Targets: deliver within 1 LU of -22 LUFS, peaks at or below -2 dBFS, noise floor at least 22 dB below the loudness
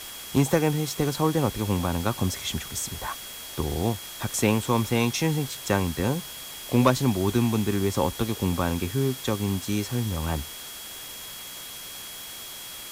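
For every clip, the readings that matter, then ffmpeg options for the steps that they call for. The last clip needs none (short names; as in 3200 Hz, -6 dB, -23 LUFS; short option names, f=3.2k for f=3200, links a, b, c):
steady tone 3300 Hz; tone level -43 dBFS; noise floor -39 dBFS; noise floor target -49 dBFS; loudness -27.0 LUFS; peak -9.0 dBFS; loudness target -22.0 LUFS
-> -af "bandreject=f=3.3k:w=30"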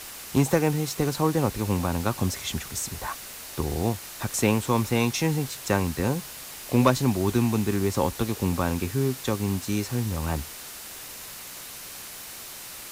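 steady tone none; noise floor -40 dBFS; noise floor target -48 dBFS
-> -af "afftdn=nr=8:nf=-40"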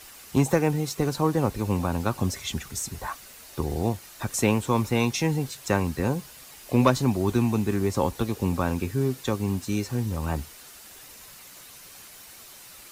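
noise floor -47 dBFS; noise floor target -49 dBFS
-> -af "afftdn=nr=6:nf=-47"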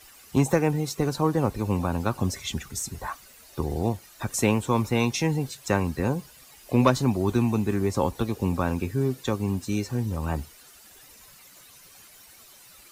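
noise floor -51 dBFS; loudness -26.5 LUFS; peak -9.5 dBFS; loudness target -22.0 LUFS
-> -af "volume=4.5dB"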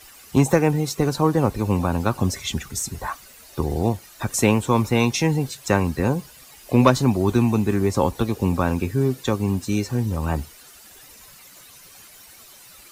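loudness -22.0 LUFS; peak -5.0 dBFS; noise floor -47 dBFS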